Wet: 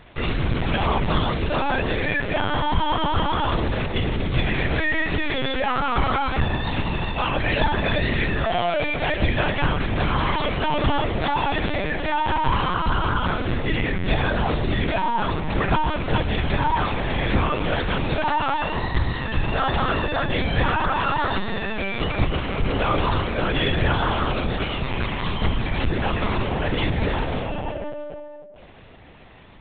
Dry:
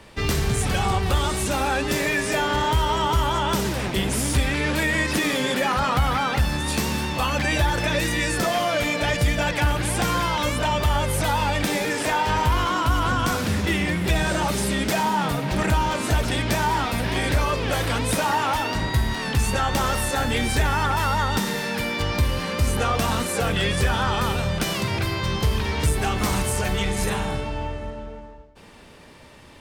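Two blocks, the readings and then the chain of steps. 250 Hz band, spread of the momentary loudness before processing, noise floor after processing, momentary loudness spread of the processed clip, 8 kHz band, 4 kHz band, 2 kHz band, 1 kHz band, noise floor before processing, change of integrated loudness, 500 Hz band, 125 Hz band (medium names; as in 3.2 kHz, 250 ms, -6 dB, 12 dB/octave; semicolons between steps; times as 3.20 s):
0.0 dB, 3 LU, -38 dBFS, 4 LU, under -40 dB, -1.5 dB, 0.0 dB, +0.5 dB, -42 dBFS, -0.5 dB, +0.5 dB, -0.5 dB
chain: filtered feedback delay 137 ms, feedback 72%, low-pass 950 Hz, level -11 dB; LPC vocoder at 8 kHz pitch kept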